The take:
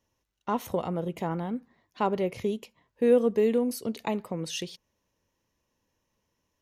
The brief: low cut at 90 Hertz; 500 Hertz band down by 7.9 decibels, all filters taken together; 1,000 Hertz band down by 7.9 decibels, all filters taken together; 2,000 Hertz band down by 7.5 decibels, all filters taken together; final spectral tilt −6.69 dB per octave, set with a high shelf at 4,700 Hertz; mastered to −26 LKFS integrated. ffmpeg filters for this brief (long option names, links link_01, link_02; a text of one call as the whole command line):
ffmpeg -i in.wav -af "highpass=90,equalizer=frequency=500:width_type=o:gain=-7.5,equalizer=frequency=1000:width_type=o:gain=-5.5,equalizer=frequency=2000:width_type=o:gain=-6.5,highshelf=frequency=4700:gain=-8,volume=8dB" out.wav